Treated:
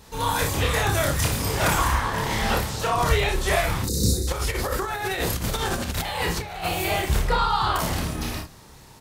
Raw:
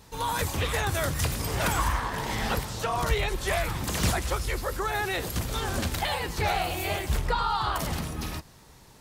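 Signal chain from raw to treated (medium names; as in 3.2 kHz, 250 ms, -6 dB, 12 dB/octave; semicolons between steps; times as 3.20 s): 3.83–4.28 s: time-frequency box 540–3600 Hz -27 dB; early reflections 29 ms -3.5 dB, 59 ms -6.5 dB, 69 ms -14.5 dB; 4.32–6.66 s: compressor with a negative ratio -29 dBFS, ratio -0.5; trim +3 dB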